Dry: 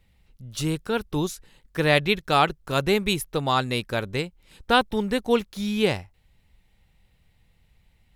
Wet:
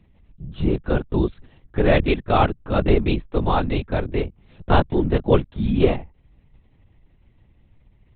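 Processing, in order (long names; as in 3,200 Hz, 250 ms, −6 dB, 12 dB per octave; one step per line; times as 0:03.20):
linear-prediction vocoder at 8 kHz whisper
tilt shelving filter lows +6.5 dB, about 1,200 Hz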